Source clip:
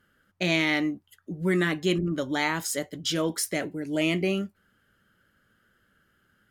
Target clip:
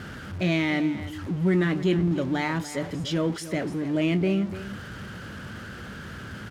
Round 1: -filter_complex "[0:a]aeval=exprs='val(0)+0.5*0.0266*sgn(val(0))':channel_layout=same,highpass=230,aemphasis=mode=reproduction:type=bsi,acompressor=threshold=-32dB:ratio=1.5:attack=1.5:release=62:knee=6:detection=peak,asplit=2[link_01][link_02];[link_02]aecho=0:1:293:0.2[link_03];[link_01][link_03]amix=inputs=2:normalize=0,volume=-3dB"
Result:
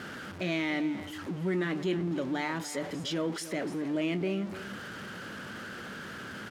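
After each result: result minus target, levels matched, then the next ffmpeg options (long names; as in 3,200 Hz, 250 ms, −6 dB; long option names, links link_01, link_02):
downward compressor: peak gain reduction +6 dB; 125 Hz band −3.0 dB
-filter_complex "[0:a]aeval=exprs='val(0)+0.5*0.0266*sgn(val(0))':channel_layout=same,highpass=230,aemphasis=mode=reproduction:type=bsi,asplit=2[link_01][link_02];[link_02]aecho=0:1:293:0.2[link_03];[link_01][link_03]amix=inputs=2:normalize=0,volume=-3dB"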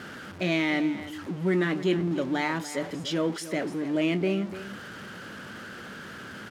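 125 Hz band −4.5 dB
-filter_complex "[0:a]aeval=exprs='val(0)+0.5*0.0266*sgn(val(0))':channel_layout=same,highpass=86,aemphasis=mode=reproduction:type=bsi,asplit=2[link_01][link_02];[link_02]aecho=0:1:293:0.2[link_03];[link_01][link_03]amix=inputs=2:normalize=0,volume=-3dB"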